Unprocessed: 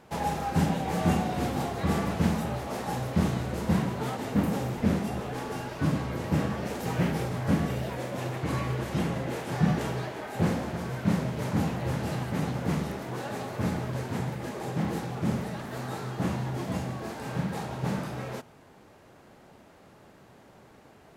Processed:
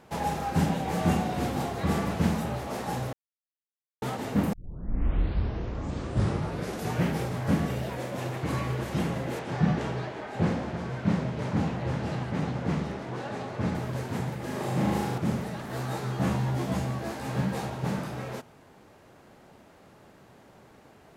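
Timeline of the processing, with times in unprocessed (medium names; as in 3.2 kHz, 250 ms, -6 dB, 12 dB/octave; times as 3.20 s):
3.13–4.02 s: mute
4.53 s: tape start 2.52 s
9.39–13.75 s: distance through air 76 m
14.45–15.18 s: flutter echo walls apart 6.7 m, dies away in 0.98 s
15.68–17.70 s: doubling 15 ms -2 dB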